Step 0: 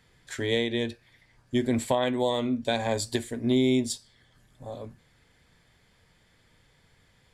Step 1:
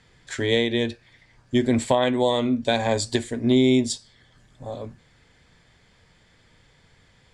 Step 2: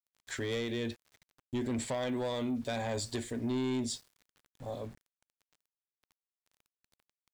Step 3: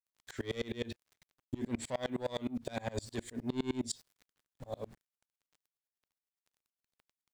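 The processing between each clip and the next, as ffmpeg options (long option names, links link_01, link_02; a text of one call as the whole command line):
ffmpeg -i in.wav -af "lowpass=frequency=8700:width=0.5412,lowpass=frequency=8700:width=1.3066,volume=5dB" out.wav
ffmpeg -i in.wav -af "asoftclip=type=tanh:threshold=-17dB,alimiter=limit=-22.5dB:level=0:latency=1:release=16,aeval=exprs='val(0)*gte(abs(val(0)),0.00422)':channel_layout=same,volume=-6dB" out.wav
ffmpeg -i in.wav -af "aeval=exprs='val(0)*pow(10,-29*if(lt(mod(-9.7*n/s,1),2*abs(-9.7)/1000),1-mod(-9.7*n/s,1)/(2*abs(-9.7)/1000),(mod(-9.7*n/s,1)-2*abs(-9.7)/1000)/(1-2*abs(-9.7)/1000))/20)':channel_layout=same,volume=4.5dB" out.wav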